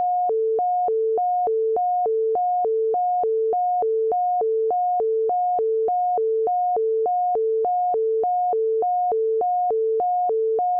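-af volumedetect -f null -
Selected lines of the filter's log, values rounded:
mean_volume: -21.0 dB
max_volume: -18.0 dB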